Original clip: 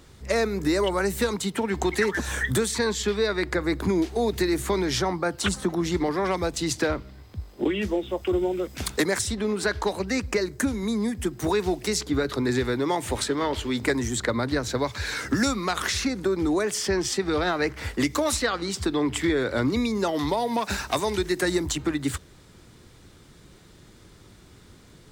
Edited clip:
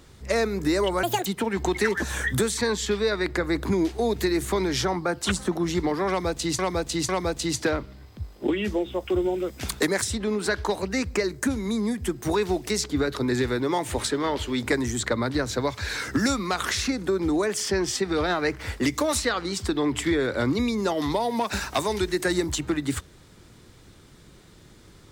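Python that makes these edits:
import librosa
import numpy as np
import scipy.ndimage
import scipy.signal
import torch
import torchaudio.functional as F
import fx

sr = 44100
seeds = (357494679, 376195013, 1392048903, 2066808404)

y = fx.edit(x, sr, fx.speed_span(start_s=1.03, length_s=0.4, speed=1.75),
    fx.repeat(start_s=6.26, length_s=0.5, count=3), tone=tone)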